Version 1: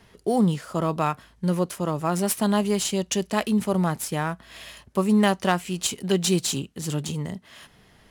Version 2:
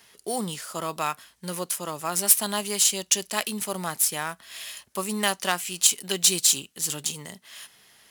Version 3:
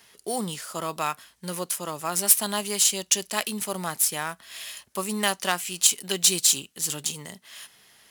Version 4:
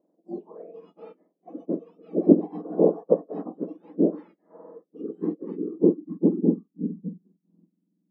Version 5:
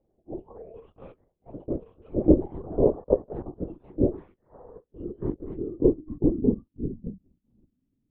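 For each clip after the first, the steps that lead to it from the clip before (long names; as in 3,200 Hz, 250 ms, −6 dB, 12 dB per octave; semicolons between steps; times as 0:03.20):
spectral tilt +4 dB per octave; level −3 dB
no processing that can be heard
frequency axis turned over on the octave scale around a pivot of 1,800 Hz; low-pass filter sweep 580 Hz → 190 Hz, 0:04.57–0:07.26; noise reduction from a noise print of the clip's start 14 dB; level −9 dB
linear-prediction vocoder at 8 kHz whisper; level −1.5 dB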